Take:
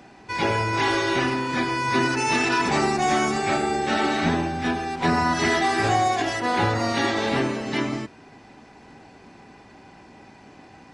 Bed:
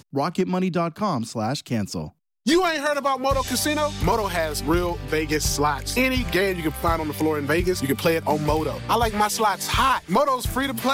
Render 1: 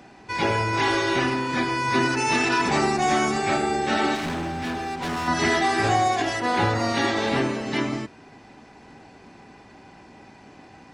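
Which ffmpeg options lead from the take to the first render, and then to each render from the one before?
-filter_complex "[0:a]asettb=1/sr,asplit=3[a][b][c];[a]atrim=end=4.154[d];[b]atrim=start=4.15:end=5.28,asetpts=PTS-STARTPTS,afade=t=in:d=0.004:c=qsin,afade=t=out:st=1.126:d=0.004:c=qsin,volume=26dB,asoftclip=hard,volume=-26dB[e];[c]atrim=start=5.276[f];[d][e]acrossfade=d=0.004:c1=hsin:c2=qsin[g];[g][f]acrossfade=d=0.004:c1=qsin:c2=hsin"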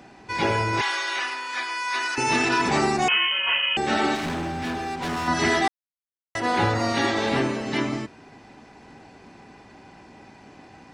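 -filter_complex "[0:a]asettb=1/sr,asplit=3[a][b][c];[a]atrim=end=0.814[d];[b]atrim=start=0.81:end=2.18,asetpts=PTS-STARTPTS,afade=t=in:d=0.004:c=qsin,afade=t=out:st=1.366:d=0.004:c=qsin,highpass=1.1k[e];[c]atrim=start=2.176[f];[d][e]acrossfade=d=0.004:c1=hsin:c2=qsin[g];[g][f]acrossfade=d=0.004:c1=qsin:c2=hsin,asettb=1/sr,asplit=3[h][i][j];[h]atrim=end=3.084[k];[i]atrim=start=3.08:end=3.77,asetpts=PTS-STARTPTS,afade=t=in:d=0.004:c=qsin,afade=t=out:st=0.686:d=0.004:c=qsin,lowpass=f=2.8k:t=q:w=0.5098,lowpass=f=2.8k:t=q:w=0.6013,lowpass=f=2.8k:t=q:w=0.9,lowpass=f=2.8k:t=q:w=2.563,afreqshift=-3300[l];[j]atrim=start=3.766[m];[k][l]acrossfade=d=0.004:c1=hsin:c2=qsin[n];[n][m]acrossfade=d=0.004:c1=qsin:c2=hsin,asplit=3[o][p][q];[o]atrim=end=5.68,asetpts=PTS-STARTPTS,afade=t=out:st=5.676:d=0.004:c=hsin[r];[p]atrim=start=5.68:end=6.35,asetpts=PTS-STARTPTS,volume=0[s];[q]atrim=start=6.35,asetpts=PTS-STARTPTS,afade=t=in:d=0.004:c=hsin[t];[r][s][t]concat=n=3:v=0:a=1"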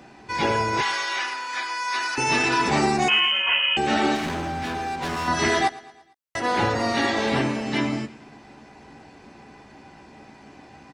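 -filter_complex "[0:a]asplit=2[a][b];[b]adelay=14,volume=-8dB[c];[a][c]amix=inputs=2:normalize=0,aecho=1:1:113|226|339|452:0.1|0.052|0.027|0.0141"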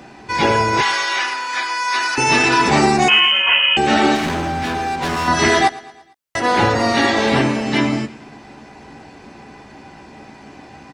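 -af "volume=7dB"

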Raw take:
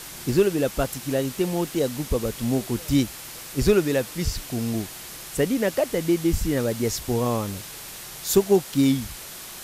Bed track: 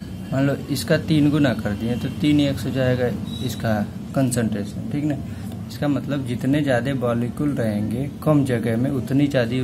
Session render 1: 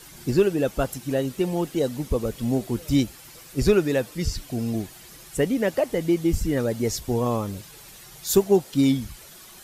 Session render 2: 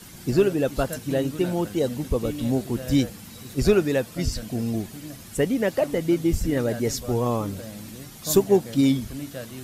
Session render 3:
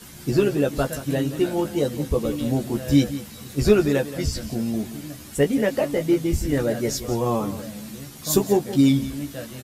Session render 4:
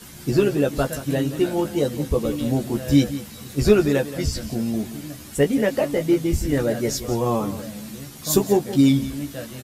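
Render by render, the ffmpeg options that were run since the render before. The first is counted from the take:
-af "afftdn=nr=10:nf=-39"
-filter_complex "[1:a]volume=-16.5dB[a];[0:a][a]amix=inputs=2:normalize=0"
-filter_complex "[0:a]asplit=2[a][b];[b]adelay=14,volume=-4dB[c];[a][c]amix=inputs=2:normalize=0,aecho=1:1:176:0.2"
-af "volume=1dB"

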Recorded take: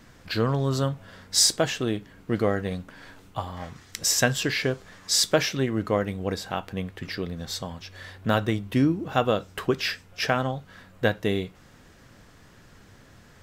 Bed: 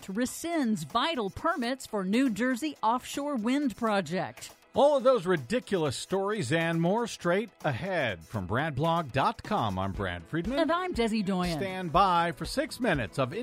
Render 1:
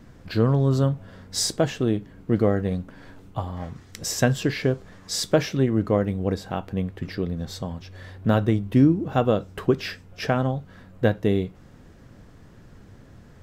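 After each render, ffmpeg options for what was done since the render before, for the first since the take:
-af "tiltshelf=f=790:g=6"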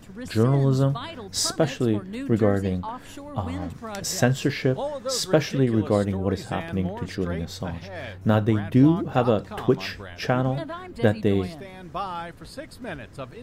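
-filter_complex "[1:a]volume=-7.5dB[a];[0:a][a]amix=inputs=2:normalize=0"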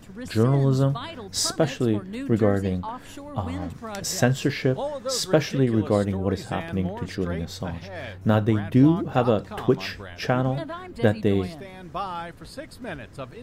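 -af anull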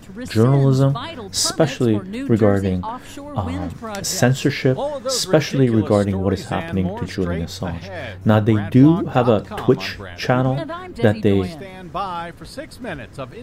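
-af "volume=5.5dB,alimiter=limit=-2dB:level=0:latency=1"

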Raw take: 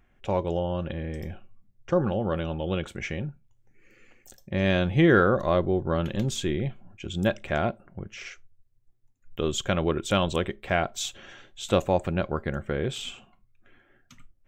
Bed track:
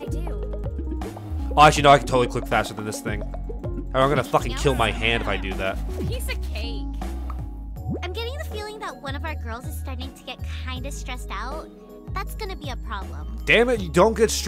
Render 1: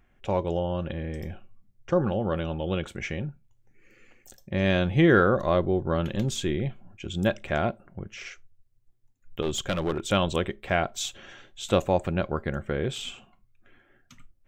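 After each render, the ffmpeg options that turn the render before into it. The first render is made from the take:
-filter_complex "[0:a]asettb=1/sr,asplit=3[a][b][c];[a]atrim=end=9.424[d];[b]atrim=start=9.42:end=10.08,asetpts=PTS-STARTPTS,afade=t=in:d=0.004:c=qsin,afade=t=out:st=0.656:d=0.004:c=qsin,aeval=exprs='clip(val(0),-1,0.0562)':c=same[e];[c]atrim=start=10.076[f];[d][e]acrossfade=d=0.004:c1=hsin:c2=qsin[g];[g][f]acrossfade=d=0.004:c1=qsin:c2=hsin"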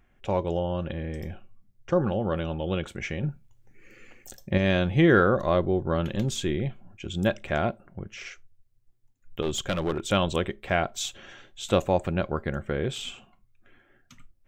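-filter_complex "[0:a]asettb=1/sr,asplit=3[a][b][c];[a]atrim=end=3.234[d];[b]atrim=start=3.23:end=4.58,asetpts=PTS-STARTPTS,afade=t=in:d=0.004:c=qsin,afade=t=out:st=1.346:d=0.004:c=qsin,acontrast=37[e];[c]atrim=start=4.576[f];[d][e]acrossfade=d=0.004:c1=hsin:c2=qsin[g];[g][f]acrossfade=d=0.004:c1=qsin:c2=hsin"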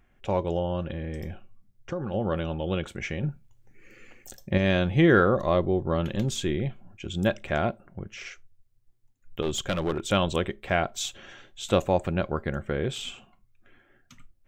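-filter_complex "[0:a]asettb=1/sr,asplit=3[a][b][c];[a]atrim=end=0.824[d];[b]atrim=start=0.82:end=2.14,asetpts=PTS-STARTPTS,afade=t=in:d=0.004:c=qsin,afade=t=out:st=1.316:d=0.004:c=qsin,acompressor=threshold=-27dB:ratio=6:attack=3.2:release=140:knee=1:detection=peak[e];[c]atrim=start=2.136[f];[d][e]acrossfade=d=0.004:c1=hsin:c2=qsin[g];[g][f]acrossfade=d=0.004:c1=qsin:c2=hsin,asettb=1/sr,asplit=3[h][i][j];[h]atrim=end=5.254[k];[i]atrim=start=5.25:end=6.03,asetpts=PTS-STARTPTS,afade=t=in:d=0.004:c=qsin,afade=t=out:st=0.776:d=0.004:c=qsin,bandreject=f=1.5k:w=6.5[l];[j]atrim=start=6.026[m];[k][l]acrossfade=d=0.004:c1=hsin:c2=qsin[n];[n][m]acrossfade=d=0.004:c1=qsin:c2=hsin"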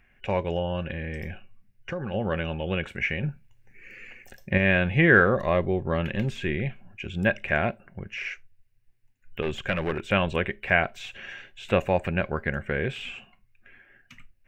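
-filter_complex "[0:a]acrossover=split=2800[a][b];[b]acompressor=threshold=-48dB:ratio=4:attack=1:release=60[c];[a][c]amix=inputs=2:normalize=0,superequalizer=6b=0.631:11b=2.82:12b=3.16:15b=0.708"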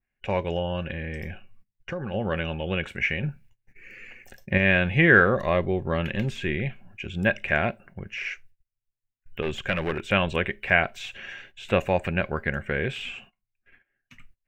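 -af "agate=range=-21dB:threshold=-50dB:ratio=16:detection=peak,adynamicequalizer=threshold=0.0224:dfrequency=1600:dqfactor=0.7:tfrequency=1600:tqfactor=0.7:attack=5:release=100:ratio=0.375:range=1.5:mode=boostabove:tftype=highshelf"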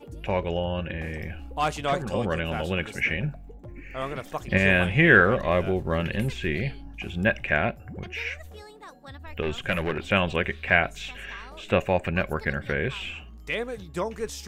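-filter_complex "[1:a]volume=-13dB[a];[0:a][a]amix=inputs=2:normalize=0"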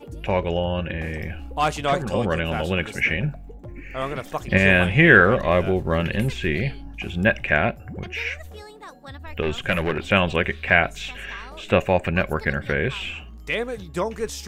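-af "volume=4dB,alimiter=limit=-1dB:level=0:latency=1"

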